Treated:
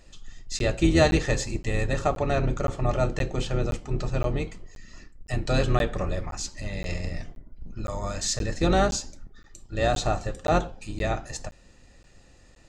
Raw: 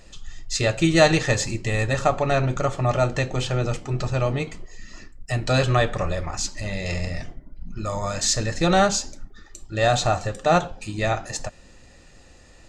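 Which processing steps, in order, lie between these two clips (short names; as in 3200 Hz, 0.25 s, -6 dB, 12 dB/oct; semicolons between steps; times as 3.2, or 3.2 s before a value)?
octaver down 2 oct, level +3 dB; dynamic EQ 360 Hz, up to +5 dB, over -33 dBFS, Q 1.5; crackling interface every 0.52 s, samples 512, zero, from 0.59; gain -6 dB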